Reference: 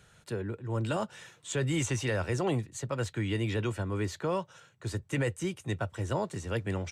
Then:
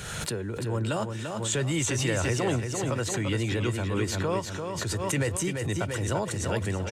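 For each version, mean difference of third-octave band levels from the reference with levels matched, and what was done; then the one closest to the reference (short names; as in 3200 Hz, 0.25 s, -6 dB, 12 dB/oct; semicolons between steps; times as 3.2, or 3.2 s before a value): 7.5 dB: high shelf 4300 Hz +5 dB; feedback echo 0.342 s, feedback 37%, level -6 dB; backwards sustainer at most 30 dB/s; gain +1.5 dB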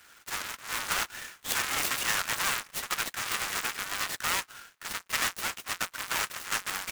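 15.0 dB: half-waves squared off; HPF 1200 Hz 24 dB/oct; noise-modulated delay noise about 4000 Hz, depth 0.049 ms; gain +5.5 dB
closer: first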